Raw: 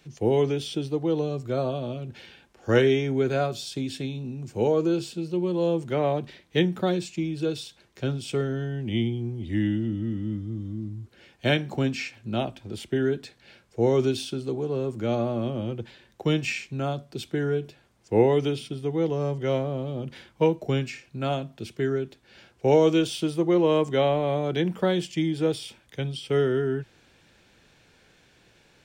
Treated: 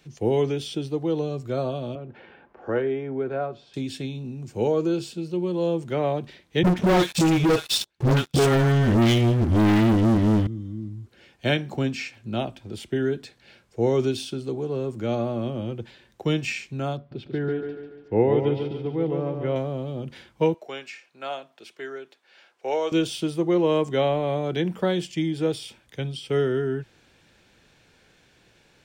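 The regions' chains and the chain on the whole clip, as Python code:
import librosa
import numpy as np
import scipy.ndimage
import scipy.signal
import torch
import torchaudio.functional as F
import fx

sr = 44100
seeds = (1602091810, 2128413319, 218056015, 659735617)

y = fx.chain(x, sr, fx.lowpass(hz=1300.0, slope=12),
    fx.low_shelf(hz=260.0, db=-11.5),
    fx.band_squash(depth_pct=40), at=(1.95, 3.74))
y = fx.chain(y, sr, fx.dispersion(late='highs', ms=145.0, hz=660.0),
    fx.transient(attack_db=-5, sustain_db=-9),
    fx.leveller(passes=5), at=(6.63, 10.47))
y = fx.chain(y, sr, fx.air_absorb(metres=340.0),
    fx.echo_feedback(ms=143, feedback_pct=47, wet_db=-6), at=(16.97, 19.56))
y = fx.chain(y, sr, fx.highpass(hz=670.0, slope=12),
    fx.high_shelf(hz=4300.0, db=-7.0), at=(20.54, 22.92))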